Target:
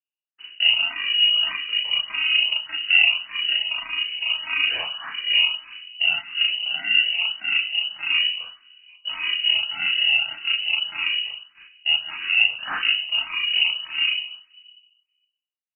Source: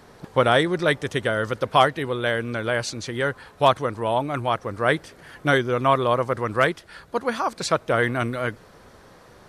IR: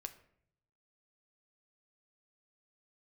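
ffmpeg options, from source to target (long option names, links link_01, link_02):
-filter_complex "[0:a]highpass=73,agate=range=-54dB:threshold=-40dB:ratio=16:detection=peak,bandreject=frequency=60:width_type=h:width=6,bandreject=frequency=120:width_type=h:width=6,bandreject=frequency=180:width_type=h:width=6,bandreject=frequency=240:width_type=h:width=6,bandreject=frequency=300:width_type=h:width=6,bandreject=frequency=360:width_type=h:width=6,bandreject=frequency=420:width_type=h:width=6,bandreject=frequency=480:width_type=h:width=6,bandreject=frequency=540:width_type=h:width=6,bandreject=frequency=600:width_type=h:width=6,asetrate=26548,aresample=44100,asplit=2[link_01][link_02];[link_02]acrusher=samples=18:mix=1:aa=0.000001,volume=-3.5dB[link_03];[link_01][link_03]amix=inputs=2:normalize=0,flanger=delay=8.9:depth=8.3:regen=-40:speed=0.23:shape=triangular,asetrate=22696,aresample=44100,atempo=1.94306,alimiter=limit=-13.5dB:level=0:latency=1:release=452,asplit=2[link_04][link_05];[1:a]atrim=start_sample=2205,asetrate=27783,aresample=44100,adelay=36[link_06];[link_05][link_06]afir=irnorm=-1:irlink=0,volume=3dB[link_07];[link_04][link_07]amix=inputs=2:normalize=0,lowpass=frequency=2600:width_type=q:width=0.5098,lowpass=frequency=2600:width_type=q:width=0.6013,lowpass=frequency=2600:width_type=q:width=0.9,lowpass=frequency=2600:width_type=q:width=2.563,afreqshift=-3000,asplit=2[link_08][link_09];[link_09]afreqshift=1.7[link_10];[link_08][link_10]amix=inputs=2:normalize=1,volume=4dB"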